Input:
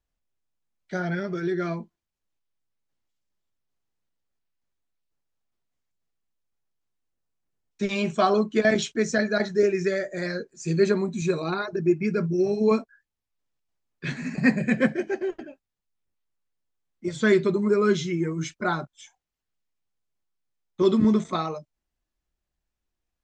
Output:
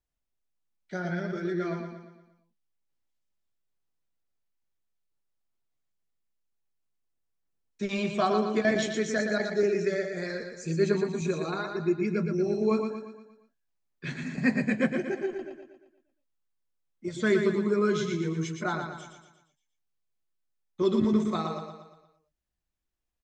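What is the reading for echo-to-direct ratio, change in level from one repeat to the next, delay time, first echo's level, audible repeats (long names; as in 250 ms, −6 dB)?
−5.0 dB, −6.5 dB, 117 ms, −6.0 dB, 5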